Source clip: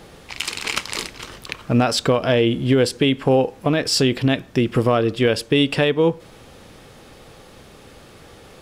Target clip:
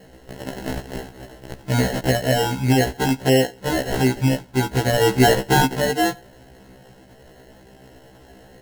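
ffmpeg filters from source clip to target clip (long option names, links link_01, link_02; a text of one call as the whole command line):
ffmpeg -i in.wav -filter_complex "[0:a]acrusher=samples=37:mix=1:aa=0.000001,asettb=1/sr,asplit=3[link_01][link_02][link_03];[link_01]atrim=end=5.014[link_04];[link_02]atrim=start=5.01:end=5.66,asetpts=PTS-STARTPTS,afade=type=in:duration=0.004:curve=qsin,afade=type=out:start_time=0.646:duration=0.004:curve=qsin,acontrast=65[link_05];[link_03]atrim=start=5.656[link_06];[link_04][link_05]acrossfade=duration=0.004:curve1=hsin:curve2=qsin[link_07];[link_07][link_06]acrossfade=duration=0.004:curve1=qsin:curve2=hsin,afftfilt=real='re*1.73*eq(mod(b,3),0)':imag='im*1.73*eq(mod(b,3),0)':win_size=2048:overlap=0.75" out.wav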